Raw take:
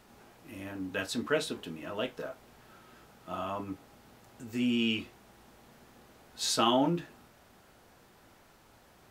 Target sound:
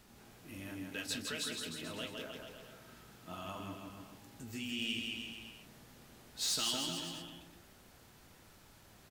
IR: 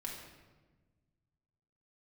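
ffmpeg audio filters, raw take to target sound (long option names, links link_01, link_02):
-filter_complex "[0:a]equalizer=frequency=750:width=0.4:gain=-7.5,acrossover=split=2000[link_01][link_02];[link_01]acompressor=threshold=-44dB:ratio=6[link_03];[link_03][link_02]amix=inputs=2:normalize=0,asoftclip=type=tanh:threshold=-30dB,aecho=1:1:160|304|433.6|550.2|655.2:0.631|0.398|0.251|0.158|0.1,volume=1dB"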